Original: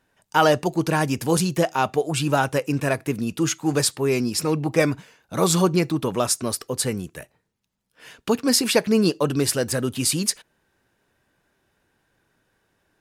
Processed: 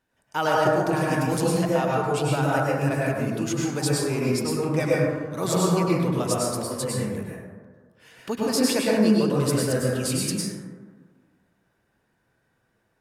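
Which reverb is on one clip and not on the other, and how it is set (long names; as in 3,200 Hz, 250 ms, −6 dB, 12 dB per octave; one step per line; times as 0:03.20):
dense smooth reverb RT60 1.6 s, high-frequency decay 0.3×, pre-delay 90 ms, DRR −5.5 dB
level −8.5 dB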